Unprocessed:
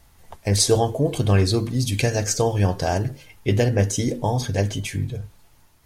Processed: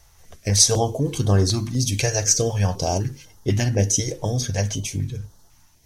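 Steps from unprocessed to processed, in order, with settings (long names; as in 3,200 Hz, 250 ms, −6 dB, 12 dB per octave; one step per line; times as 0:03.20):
parametric band 5,900 Hz +11 dB 0.31 octaves
notch on a step sequencer 4 Hz 240–2,400 Hz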